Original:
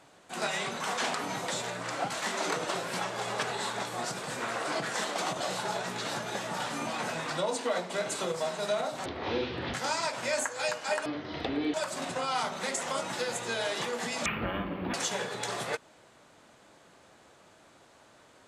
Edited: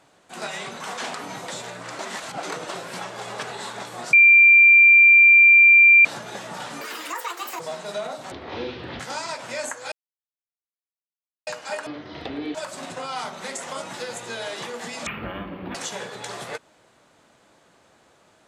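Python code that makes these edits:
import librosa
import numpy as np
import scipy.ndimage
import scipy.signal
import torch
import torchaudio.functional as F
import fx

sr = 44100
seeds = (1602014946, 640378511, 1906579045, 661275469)

y = fx.edit(x, sr, fx.reverse_span(start_s=1.99, length_s=0.44),
    fx.bleep(start_s=4.13, length_s=1.92, hz=2370.0, db=-8.5),
    fx.speed_span(start_s=6.81, length_s=1.53, speed=1.94),
    fx.insert_silence(at_s=10.66, length_s=1.55), tone=tone)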